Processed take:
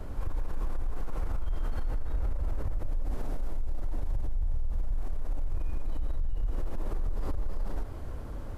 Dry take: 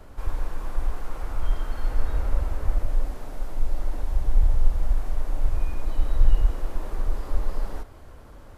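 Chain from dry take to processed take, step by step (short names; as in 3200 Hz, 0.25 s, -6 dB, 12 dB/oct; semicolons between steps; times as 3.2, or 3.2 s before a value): compressor, threshold -20 dBFS, peak gain reduction 11.5 dB; low shelf 480 Hz +8.5 dB; limiter -23 dBFS, peak gain reduction 16 dB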